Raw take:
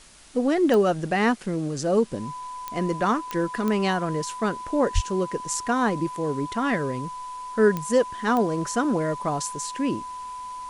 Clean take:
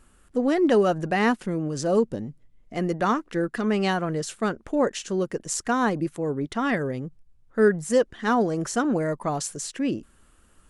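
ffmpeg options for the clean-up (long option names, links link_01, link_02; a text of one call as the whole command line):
ffmpeg -i in.wav -filter_complex "[0:a]adeclick=threshold=4,bandreject=frequency=1000:width=30,asplit=3[link_01][link_02][link_03];[link_01]afade=type=out:start_time=4.94:duration=0.02[link_04];[link_02]highpass=frequency=140:width=0.5412,highpass=frequency=140:width=1.3066,afade=type=in:start_time=4.94:duration=0.02,afade=type=out:start_time=5.06:duration=0.02[link_05];[link_03]afade=type=in:start_time=5.06:duration=0.02[link_06];[link_04][link_05][link_06]amix=inputs=3:normalize=0,afwtdn=0.0035" out.wav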